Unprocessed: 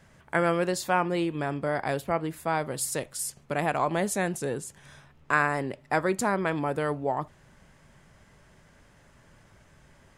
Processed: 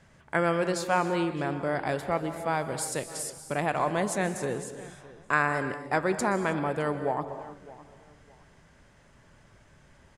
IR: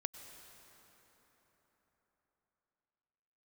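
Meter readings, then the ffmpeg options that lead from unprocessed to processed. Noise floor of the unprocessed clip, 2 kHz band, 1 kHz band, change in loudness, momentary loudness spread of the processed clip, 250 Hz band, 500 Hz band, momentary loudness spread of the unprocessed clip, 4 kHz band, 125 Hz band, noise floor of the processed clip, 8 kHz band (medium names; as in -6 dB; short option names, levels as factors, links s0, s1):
-58 dBFS, -0.5 dB, -0.5 dB, -0.5 dB, 10 LU, -0.5 dB, -0.5 dB, 7 LU, -0.5 dB, -0.5 dB, -59 dBFS, -2.0 dB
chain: -filter_complex "[0:a]lowpass=9900,asplit=2[s0][s1];[s1]adelay=612,lowpass=f=3000:p=1,volume=0.112,asplit=2[s2][s3];[s3]adelay=612,lowpass=f=3000:p=1,volume=0.27[s4];[s0][s2][s4]amix=inputs=3:normalize=0[s5];[1:a]atrim=start_sample=2205,afade=t=out:st=0.3:d=0.01,atrim=end_sample=13671,asetrate=33957,aresample=44100[s6];[s5][s6]afir=irnorm=-1:irlink=0"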